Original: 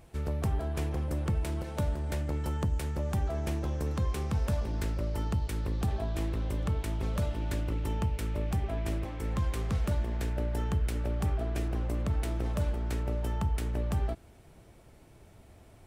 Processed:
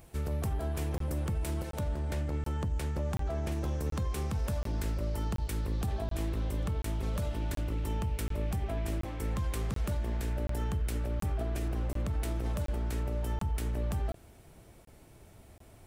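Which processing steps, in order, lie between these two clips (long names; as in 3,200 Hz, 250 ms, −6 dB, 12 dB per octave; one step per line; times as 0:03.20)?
high-shelf EQ 8,500 Hz +10.5 dB, from 0:01.79 −3 dB, from 0:03.52 +7.5 dB
brickwall limiter −25 dBFS, peak gain reduction 5.5 dB
regular buffer underruns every 0.73 s, samples 1,024, zero, from 0:00.98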